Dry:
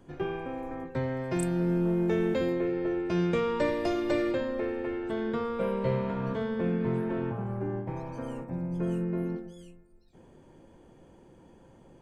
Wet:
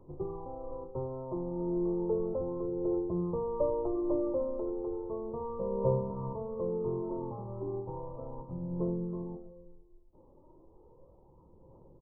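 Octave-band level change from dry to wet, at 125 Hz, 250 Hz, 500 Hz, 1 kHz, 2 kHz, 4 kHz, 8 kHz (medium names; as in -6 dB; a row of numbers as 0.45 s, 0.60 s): -6.0 dB, -6.0 dB, -2.5 dB, -5.0 dB, under -40 dB, under -35 dB, no reading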